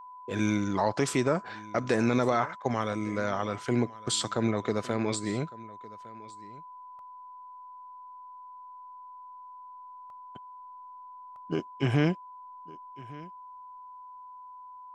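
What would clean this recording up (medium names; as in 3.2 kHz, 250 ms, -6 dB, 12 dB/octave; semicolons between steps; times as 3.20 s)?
band-stop 1 kHz, Q 30; interpolate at 6.99/10.10/11.36 s, 1.6 ms; inverse comb 1157 ms -20.5 dB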